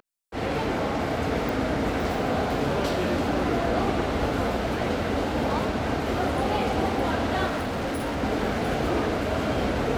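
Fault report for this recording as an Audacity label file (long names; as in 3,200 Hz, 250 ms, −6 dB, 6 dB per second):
1.490000	1.490000	click
7.460000	8.240000	clipping −25.5 dBFS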